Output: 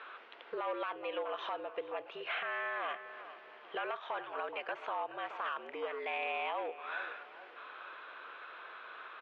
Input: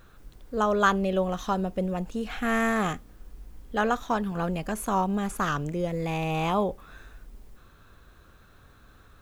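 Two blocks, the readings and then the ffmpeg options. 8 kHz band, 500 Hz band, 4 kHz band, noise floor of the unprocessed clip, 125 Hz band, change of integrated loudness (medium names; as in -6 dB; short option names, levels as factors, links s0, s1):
under -35 dB, -10.5 dB, -6.0 dB, -55 dBFS, under -40 dB, -12.5 dB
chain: -filter_complex "[0:a]aeval=exprs='clip(val(0),-1,0.0841)':c=same,acompressor=threshold=0.0126:ratio=16,asplit=2[s0][s1];[s1]adelay=424,lowpass=f=2100:p=1,volume=0.178,asplit=2[s2][s3];[s3]adelay=424,lowpass=f=2100:p=1,volume=0.48,asplit=2[s4][s5];[s5]adelay=424,lowpass=f=2100:p=1,volume=0.48,asplit=2[s6][s7];[s7]adelay=424,lowpass=f=2100:p=1,volume=0.48[s8];[s0][s2][s4][s6][s8]amix=inputs=5:normalize=0,highpass=f=510:t=q:w=0.5412,highpass=f=510:t=q:w=1.307,lowpass=f=3000:t=q:w=0.5176,lowpass=f=3000:t=q:w=0.7071,lowpass=f=3000:t=q:w=1.932,afreqshift=-62,aemphasis=mode=production:type=riaa,alimiter=level_in=5.62:limit=0.0631:level=0:latency=1:release=19,volume=0.178,volume=3.55"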